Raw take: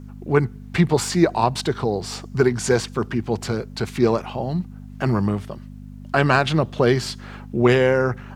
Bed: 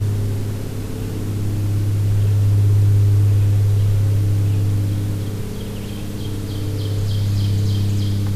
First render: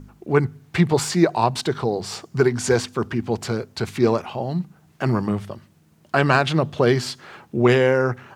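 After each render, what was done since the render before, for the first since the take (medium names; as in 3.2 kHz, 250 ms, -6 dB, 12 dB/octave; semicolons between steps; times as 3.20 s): de-hum 50 Hz, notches 5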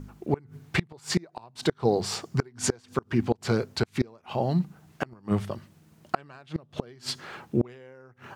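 inverted gate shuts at -11 dBFS, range -31 dB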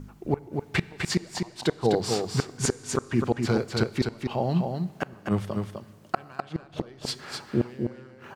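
on a send: delay 253 ms -5 dB; on the sum: Schroeder reverb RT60 2.2 s, combs from 29 ms, DRR 19 dB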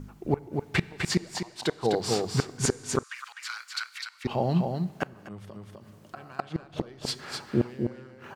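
1.37–2.05 s: bass shelf 350 Hz -6.5 dB; 3.03–4.25 s: steep high-pass 1.2 kHz; 5.06–6.15 s: compression 3:1, threshold -44 dBFS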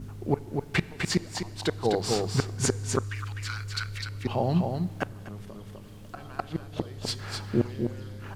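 add bed -21.5 dB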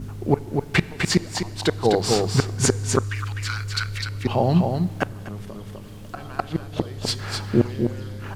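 trim +6.5 dB; peak limiter -1 dBFS, peak gain reduction 1 dB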